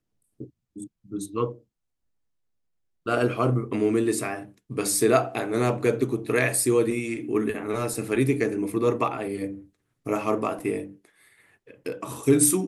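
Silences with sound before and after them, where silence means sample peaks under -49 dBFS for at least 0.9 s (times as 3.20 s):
1.59–3.06 s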